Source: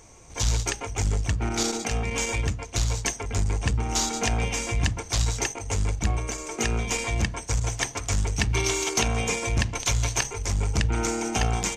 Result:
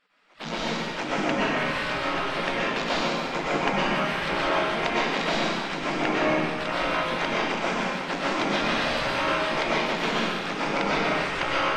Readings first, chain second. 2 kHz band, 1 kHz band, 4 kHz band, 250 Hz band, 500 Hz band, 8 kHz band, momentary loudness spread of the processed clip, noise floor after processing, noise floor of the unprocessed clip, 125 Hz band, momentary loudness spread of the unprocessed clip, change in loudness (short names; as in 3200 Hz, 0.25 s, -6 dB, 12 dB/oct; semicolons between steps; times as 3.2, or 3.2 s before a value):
+5.5 dB, +7.0 dB, +2.0 dB, +3.5 dB, +5.5 dB, -16.0 dB, 4 LU, -32 dBFS, -42 dBFS, -11.5 dB, 4 LU, +1.0 dB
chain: spectral gate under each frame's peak -20 dB weak; AGC gain up to 11 dB; air absorption 370 m; digital reverb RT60 1.8 s, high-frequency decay 0.95×, pre-delay 80 ms, DRR -7 dB; gain -1 dB